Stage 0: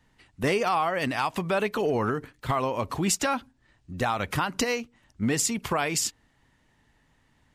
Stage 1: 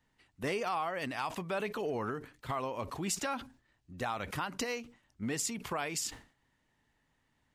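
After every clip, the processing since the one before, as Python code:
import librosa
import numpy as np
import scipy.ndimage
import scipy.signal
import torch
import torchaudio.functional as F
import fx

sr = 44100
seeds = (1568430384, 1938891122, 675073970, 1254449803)

y = fx.low_shelf(x, sr, hz=170.0, db=-4.0)
y = fx.sustainer(y, sr, db_per_s=140.0)
y = y * 10.0 ** (-9.0 / 20.0)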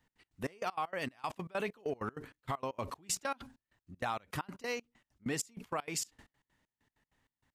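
y = fx.step_gate(x, sr, bpm=194, pattern='x.x.xx..', floor_db=-24.0, edge_ms=4.5)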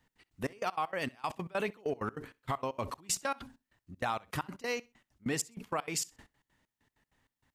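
y = fx.echo_feedback(x, sr, ms=64, feedback_pct=25, wet_db=-24.0)
y = y * 10.0 ** (2.5 / 20.0)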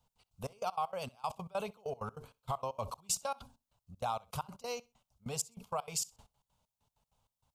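y = fx.fixed_phaser(x, sr, hz=760.0, stages=4)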